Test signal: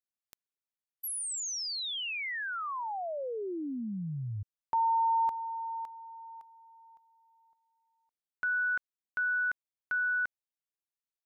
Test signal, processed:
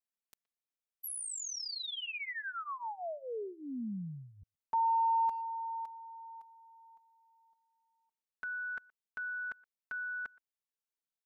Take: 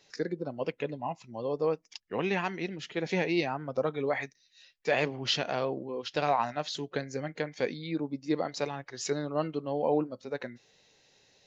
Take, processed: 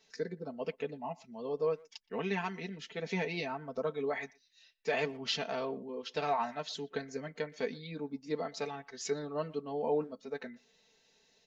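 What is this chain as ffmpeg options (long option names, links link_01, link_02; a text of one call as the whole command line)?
ffmpeg -i in.wav -filter_complex "[0:a]aecho=1:1:4.5:0.84,asplit=2[link_01][link_02];[link_02]adelay=120,highpass=300,lowpass=3400,asoftclip=type=hard:threshold=-20.5dB,volume=-24dB[link_03];[link_01][link_03]amix=inputs=2:normalize=0,volume=-7dB" out.wav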